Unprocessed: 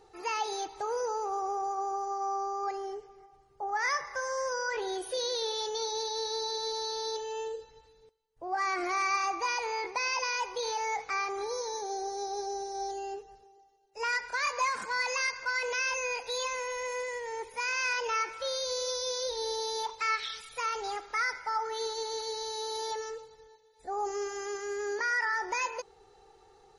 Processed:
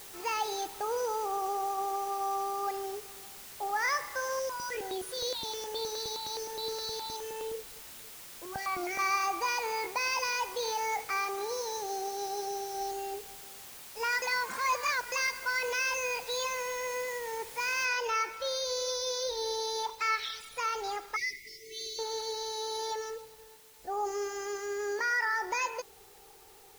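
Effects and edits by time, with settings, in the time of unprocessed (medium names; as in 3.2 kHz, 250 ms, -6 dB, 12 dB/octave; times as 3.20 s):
4.39–8.99 s: stepped phaser 9.6 Hz 320–6100 Hz
11.17–12.77 s: bass shelf 100 Hz -11.5 dB
14.22–15.12 s: reverse
17.85 s: noise floor step -48 dB -58 dB
21.16–21.99 s: brick-wall FIR band-stop 430–1900 Hz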